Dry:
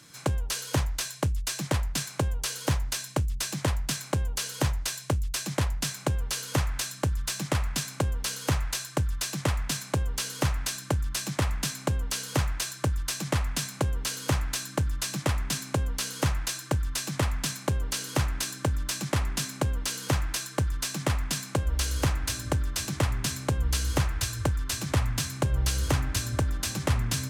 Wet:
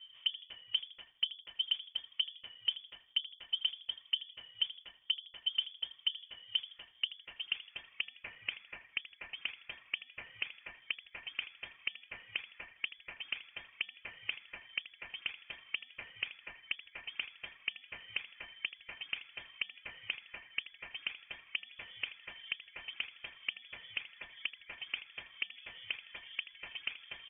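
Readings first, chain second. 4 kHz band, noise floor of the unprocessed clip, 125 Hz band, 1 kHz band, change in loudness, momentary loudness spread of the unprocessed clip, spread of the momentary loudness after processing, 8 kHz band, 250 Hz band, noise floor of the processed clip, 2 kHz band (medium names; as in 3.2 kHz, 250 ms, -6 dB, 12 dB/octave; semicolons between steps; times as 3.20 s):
-2.0 dB, -44 dBFS, under -40 dB, -23.5 dB, -10.5 dB, 3 LU, 12 LU, under -40 dB, -35.0 dB, -64 dBFS, -4.5 dB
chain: reverb removal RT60 0.76 s; peaking EQ 320 Hz +14.5 dB 0.38 oct; compression 6:1, threshold -29 dBFS, peak gain reduction 12.5 dB; band-pass sweep 380 Hz -> 880 Hz, 6.51–8.13 s; on a send: frequency-shifting echo 80 ms, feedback 38%, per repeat -56 Hz, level -15.5 dB; on the sum: frequency inversion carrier 3.4 kHz; trim +3 dB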